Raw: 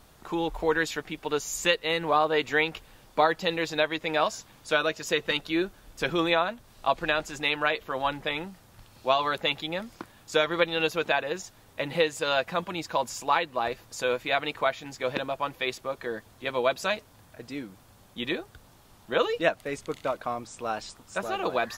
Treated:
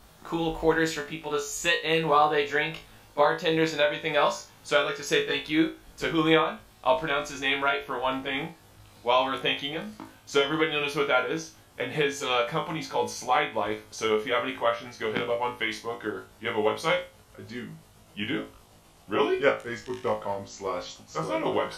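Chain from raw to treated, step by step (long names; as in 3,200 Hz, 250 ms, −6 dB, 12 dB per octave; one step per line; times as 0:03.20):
pitch glide at a constant tempo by −3.5 semitones starting unshifted
flutter between parallel walls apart 3.2 metres, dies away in 0.29 s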